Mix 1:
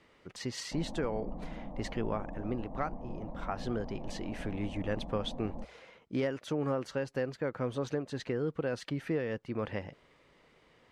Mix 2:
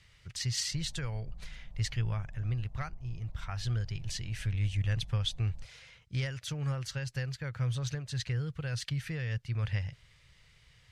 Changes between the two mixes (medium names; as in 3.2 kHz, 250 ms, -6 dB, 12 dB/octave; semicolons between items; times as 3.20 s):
speech +12.0 dB; master: add FFT filter 120 Hz 0 dB, 260 Hz -29 dB, 1.1 kHz -20 dB, 1.6 kHz -12 dB, 5.2 kHz -3 dB